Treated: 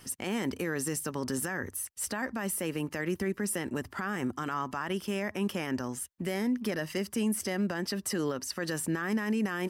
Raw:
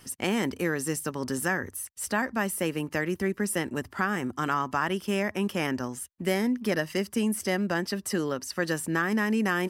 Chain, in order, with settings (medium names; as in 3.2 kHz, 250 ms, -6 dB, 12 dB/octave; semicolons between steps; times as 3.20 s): peak limiter -22.5 dBFS, peak gain reduction 10 dB